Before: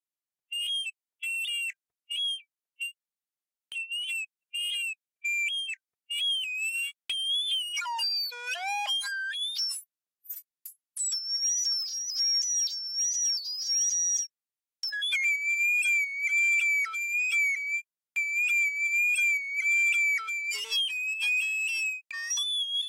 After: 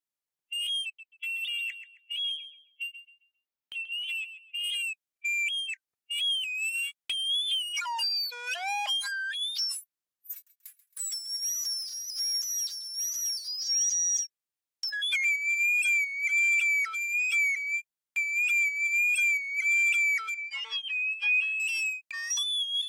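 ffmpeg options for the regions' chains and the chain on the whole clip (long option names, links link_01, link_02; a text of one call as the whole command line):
ffmpeg -i in.wav -filter_complex "[0:a]asettb=1/sr,asplit=3[link_01][link_02][link_03];[link_01]atrim=end=0.854[link_04];[link_02]atrim=start=0.85:end=4.64,asetpts=PTS-STARTPTS,afade=type=in:duration=0.004:curve=qsin,afade=type=out:start_time=3.786:duration=0.004:curve=qsin,equalizer=frequency=9000:width_type=o:width=1:gain=-11.5,asplit=2[link_05][link_06];[link_06]adelay=134,lowpass=frequency=4600:poles=1,volume=-10dB,asplit=2[link_07][link_08];[link_08]adelay=134,lowpass=frequency=4600:poles=1,volume=0.32,asplit=2[link_09][link_10];[link_10]adelay=134,lowpass=frequency=4600:poles=1,volume=0.32,asplit=2[link_11][link_12];[link_12]adelay=134,lowpass=frequency=4600:poles=1,volume=0.32[link_13];[link_05][link_07][link_09][link_11][link_13]amix=inputs=5:normalize=0,atrim=end_sample=167139[link_14];[link_03]atrim=start=4.636[link_15];[link_04][link_14]acrossfade=duration=0.004:curve1=hsin:curve2=qsin[link_16];[link_16][link_15]acrossfade=duration=0.004:curve1=qsin:curve2=hsin,asettb=1/sr,asplit=3[link_17][link_18][link_19];[link_17]atrim=end=10.334[link_20];[link_18]atrim=start=10.33:end=13.48,asetpts=PTS-STARTPTS,afade=type=in:duration=0.004:curve=qsin,afade=type=out:start_time=3.146:duration=0.004:curve=qsin,aeval=exprs='if(lt(val(0),0),0.251*val(0),val(0))':channel_layout=same,highpass=frequency=1400:width=0.5412,highpass=frequency=1400:width=1.3066,aecho=1:1:135|270|405|540|675:0.141|0.0735|0.0382|0.0199|0.0103,atrim=end_sample=138915[link_21];[link_19]atrim=start=13.476[link_22];[link_20][link_21]acrossfade=duration=0.004:curve1=hsin:curve2=qsin[link_23];[link_23][link_22]acrossfade=duration=0.004:curve1=qsin:curve2=hsin,asettb=1/sr,asplit=3[link_24][link_25][link_26];[link_24]atrim=end=20.344[link_27];[link_25]atrim=start=20.34:end=21.6,asetpts=PTS-STARTPTS,afade=type=in:duration=0.004:curve=qsin,afade=type=out:start_time=1.256:duration=0.004:curve=qsin,highpass=560,lowpass=2400,aecho=1:1:3.6:0.97,atrim=end_sample=55566[link_28];[link_26]atrim=start=21.596[link_29];[link_27][link_28]acrossfade=duration=0.004:curve1=hsin:curve2=qsin[link_30];[link_30][link_29]acrossfade=duration=0.004:curve1=qsin:curve2=hsin" out.wav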